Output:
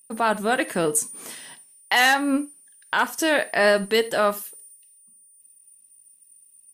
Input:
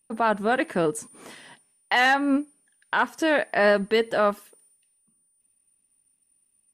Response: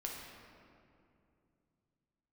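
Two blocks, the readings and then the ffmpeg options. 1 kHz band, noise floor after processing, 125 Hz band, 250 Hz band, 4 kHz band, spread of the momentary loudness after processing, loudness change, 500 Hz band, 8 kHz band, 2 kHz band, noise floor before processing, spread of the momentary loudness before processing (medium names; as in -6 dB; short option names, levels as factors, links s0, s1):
+1.0 dB, -56 dBFS, 0.0 dB, 0.0 dB, +5.5 dB, 18 LU, +1.5 dB, +0.5 dB, +13.0 dB, +2.0 dB, -70 dBFS, 11 LU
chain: -filter_complex "[0:a]aemphasis=mode=production:type=75fm,asplit=2[s0][s1];[1:a]atrim=start_sample=2205,atrim=end_sample=3969[s2];[s1][s2]afir=irnorm=-1:irlink=0,volume=0.447[s3];[s0][s3]amix=inputs=2:normalize=0,volume=0.841"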